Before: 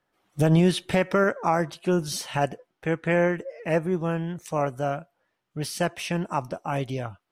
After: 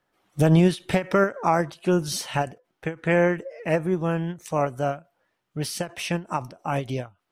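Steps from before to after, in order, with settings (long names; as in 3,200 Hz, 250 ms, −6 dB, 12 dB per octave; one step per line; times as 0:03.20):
every ending faded ahead of time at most 240 dB per second
level +2 dB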